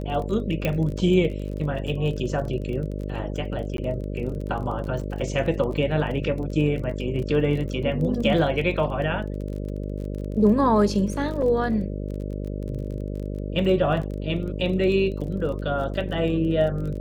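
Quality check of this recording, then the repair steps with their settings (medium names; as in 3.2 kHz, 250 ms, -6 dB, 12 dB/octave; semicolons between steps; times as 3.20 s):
buzz 50 Hz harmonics 12 -30 dBFS
crackle 30 per s -32 dBFS
0.65 s: pop -12 dBFS
3.77–3.78 s: dropout 12 ms
11.42 s: dropout 4.6 ms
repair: de-click; de-hum 50 Hz, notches 12; interpolate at 3.77 s, 12 ms; interpolate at 11.42 s, 4.6 ms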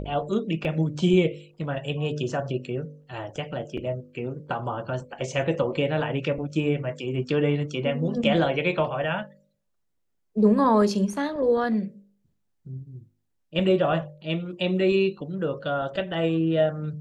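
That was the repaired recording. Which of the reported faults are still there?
0.65 s: pop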